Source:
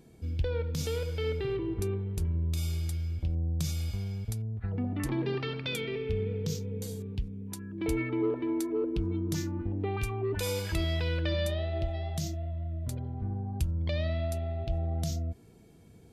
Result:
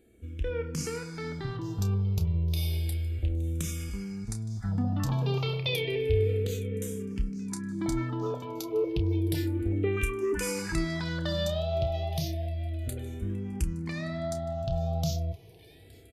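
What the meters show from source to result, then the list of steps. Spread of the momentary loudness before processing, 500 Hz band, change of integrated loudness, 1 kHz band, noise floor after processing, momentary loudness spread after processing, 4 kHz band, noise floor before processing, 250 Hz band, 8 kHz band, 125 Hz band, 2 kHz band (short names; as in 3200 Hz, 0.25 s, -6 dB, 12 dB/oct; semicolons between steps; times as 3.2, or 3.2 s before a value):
6 LU, +2.0 dB, +1.5 dB, +3.5 dB, -53 dBFS, 7 LU, +2.0 dB, -55 dBFS, +1.5 dB, +2.5 dB, +1.5 dB, +2.5 dB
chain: AGC gain up to 8 dB; doubler 30 ms -10 dB; thin delay 0.867 s, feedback 71%, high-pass 1600 Hz, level -21 dB; endless phaser -0.31 Hz; gain -2.5 dB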